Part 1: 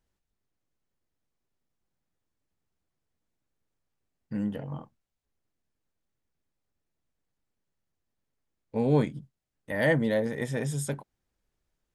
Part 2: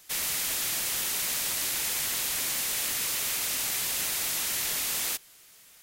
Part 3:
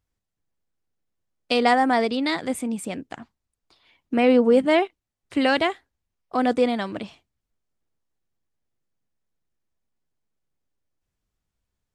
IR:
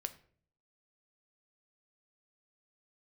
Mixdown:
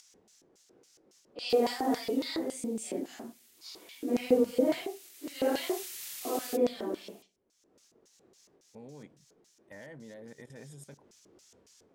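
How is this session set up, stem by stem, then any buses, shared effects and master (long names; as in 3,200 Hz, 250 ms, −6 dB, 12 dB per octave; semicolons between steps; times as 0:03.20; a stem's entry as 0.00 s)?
−13.0 dB, 0.00 s, no send, output level in coarse steps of 17 dB
0:02.00 −12.5 dB → 0:02.54 −22.5 dB → 0:03.58 −22.5 dB → 0:04.30 −14 dB → 0:05.25 −14 dB → 0:05.79 −2.5 dB, 1.40 s, no send, guitar amp tone stack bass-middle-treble 5-5-5; brickwall limiter −30.5 dBFS, peak gain reduction 6.5 dB
−2.0 dB, 0.00 s, send −5.5 dB, random phases in long frames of 200 ms; upward compression, threshold −21 dBFS; auto-filter band-pass square 3.6 Hz 390–6,000 Hz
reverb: on, RT60 0.50 s, pre-delay 3 ms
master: low-shelf EQ 97 Hz −6.5 dB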